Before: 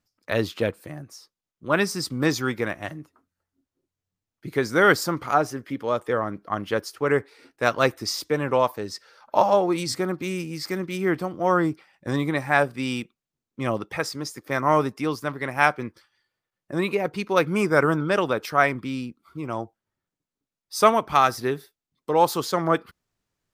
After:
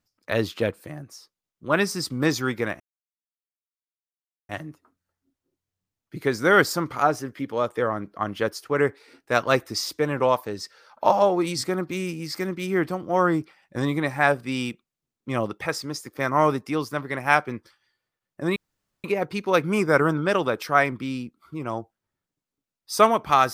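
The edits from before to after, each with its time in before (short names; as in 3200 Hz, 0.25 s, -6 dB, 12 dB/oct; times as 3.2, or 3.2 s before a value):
2.8 insert silence 1.69 s
16.87 insert room tone 0.48 s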